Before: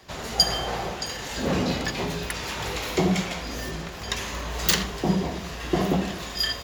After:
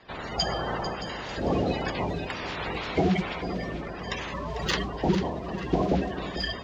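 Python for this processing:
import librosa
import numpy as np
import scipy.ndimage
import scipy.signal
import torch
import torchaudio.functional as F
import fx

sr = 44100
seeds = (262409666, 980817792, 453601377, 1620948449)

y = fx.spec_quant(x, sr, step_db=30)
y = fx.air_absorb(y, sr, metres=190.0)
y = fx.echo_feedback(y, sr, ms=446, feedback_pct=32, wet_db=-12)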